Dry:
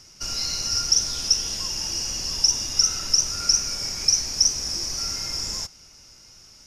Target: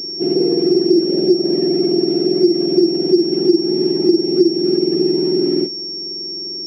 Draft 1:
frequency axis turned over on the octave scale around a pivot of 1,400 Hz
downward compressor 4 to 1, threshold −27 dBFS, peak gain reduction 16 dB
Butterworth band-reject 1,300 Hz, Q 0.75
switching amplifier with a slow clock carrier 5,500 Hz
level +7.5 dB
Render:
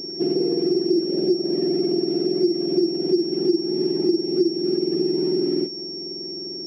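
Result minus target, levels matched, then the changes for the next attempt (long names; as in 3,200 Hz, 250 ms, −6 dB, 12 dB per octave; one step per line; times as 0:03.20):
downward compressor: peak gain reduction +7 dB
change: downward compressor 4 to 1, threshold −17.5 dBFS, peak gain reduction 9 dB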